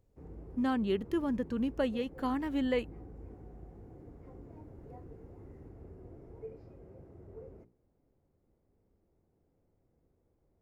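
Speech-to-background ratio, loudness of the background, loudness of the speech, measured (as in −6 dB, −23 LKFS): 18.0 dB, −51.0 LKFS, −33.0 LKFS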